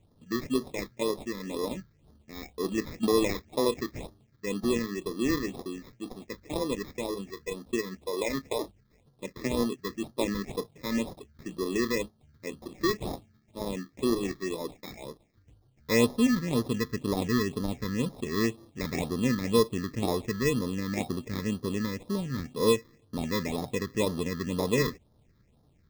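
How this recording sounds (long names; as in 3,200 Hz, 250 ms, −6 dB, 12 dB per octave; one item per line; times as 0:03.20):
aliases and images of a low sample rate 1,500 Hz, jitter 0%
phaser sweep stages 6, 2 Hz, lowest notch 710–2,400 Hz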